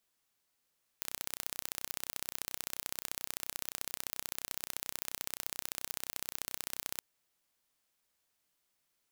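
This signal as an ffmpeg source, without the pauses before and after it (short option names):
-f lavfi -i "aevalsrc='0.376*eq(mod(n,1400),0)*(0.5+0.5*eq(mod(n,2800),0))':d=5.97:s=44100"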